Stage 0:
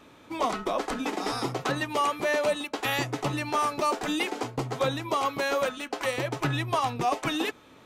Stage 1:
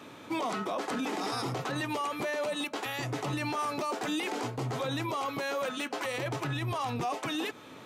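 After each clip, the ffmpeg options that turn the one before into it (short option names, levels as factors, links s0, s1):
-af "highpass=f=95:w=0.5412,highpass=f=95:w=1.3066,acompressor=threshold=0.0355:ratio=6,alimiter=level_in=2:limit=0.0631:level=0:latency=1:release=13,volume=0.501,volume=1.78"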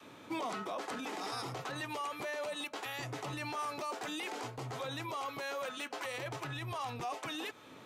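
-af "adynamicequalizer=threshold=0.00447:dfrequency=220:dqfactor=0.73:tfrequency=220:tqfactor=0.73:attack=5:release=100:ratio=0.375:range=3.5:mode=cutabove:tftype=bell,volume=0.562"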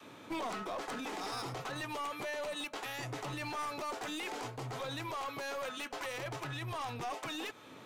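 -af "aeval=exprs='clip(val(0),-1,0.0119)':c=same,volume=1.12"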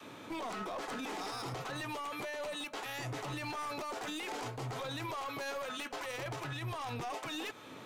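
-af "alimiter=level_in=3.55:limit=0.0631:level=0:latency=1:release=13,volume=0.282,volume=1.41"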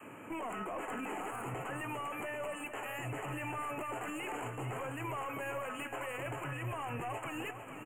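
-af "asuperstop=centerf=4600:order=20:qfactor=1.2,aecho=1:1:451|902|1353|1804|2255|2706:0.316|0.171|0.0922|0.0498|0.0269|0.0145"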